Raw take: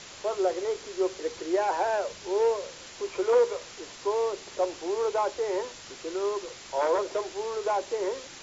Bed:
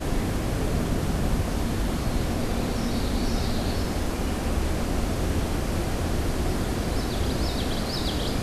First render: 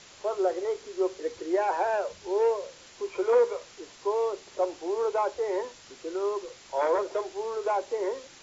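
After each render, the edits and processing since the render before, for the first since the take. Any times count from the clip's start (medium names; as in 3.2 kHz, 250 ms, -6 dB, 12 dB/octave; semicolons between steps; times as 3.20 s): noise print and reduce 6 dB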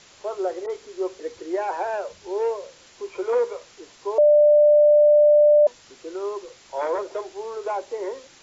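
0.66–1.20 s: phase dispersion highs, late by 40 ms, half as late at 2.1 kHz; 4.18–5.67 s: bleep 594 Hz -11 dBFS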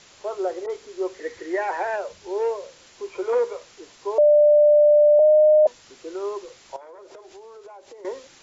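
1.14–1.96 s: peaking EQ 1.9 kHz +14 dB 0.32 oct; 5.19–5.66 s: frequency shift +17 Hz; 6.76–8.05 s: compression 16:1, threshold -40 dBFS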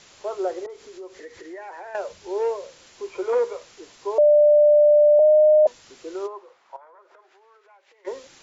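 0.66–1.95 s: compression 3:1, threshold -39 dBFS; 6.26–8.06 s: band-pass filter 830 Hz -> 2.3 kHz, Q 1.7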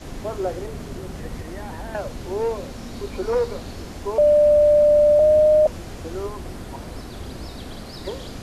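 add bed -8.5 dB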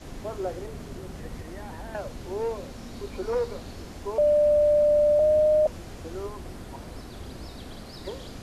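trim -5.5 dB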